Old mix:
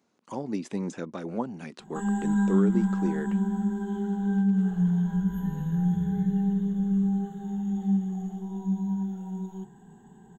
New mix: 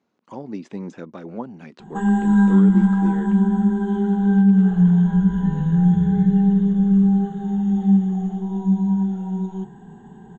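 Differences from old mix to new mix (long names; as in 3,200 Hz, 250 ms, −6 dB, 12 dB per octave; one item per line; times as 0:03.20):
background +9.5 dB
master: add high-frequency loss of the air 120 metres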